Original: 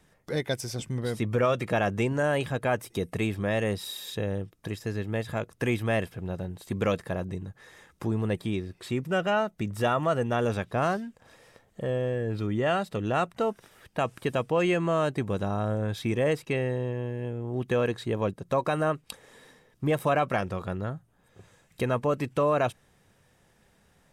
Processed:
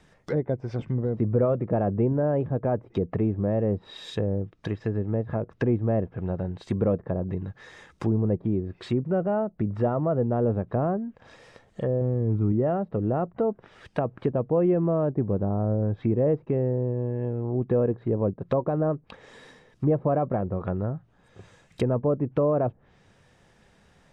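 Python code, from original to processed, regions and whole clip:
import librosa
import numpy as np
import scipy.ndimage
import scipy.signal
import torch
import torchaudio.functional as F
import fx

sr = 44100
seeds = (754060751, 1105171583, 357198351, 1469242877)

y = fx.chain(x, sr, fx.crossing_spikes(level_db=-28.5),
    fx.lowpass(hz=4500.0, slope=12),
    fx.comb(ms=0.9, depth=0.53), at=(12.01, 12.52))
y = fx.dynamic_eq(y, sr, hz=4700.0, q=0.73, threshold_db=-46.0, ratio=4.0, max_db=-5)
y = scipy.signal.sosfilt(scipy.signal.butter(2, 6500.0, 'lowpass', fs=sr, output='sos'), y)
y = fx.env_lowpass_down(y, sr, base_hz=580.0, full_db=-26.5)
y = F.gain(torch.from_numpy(y), 4.5).numpy()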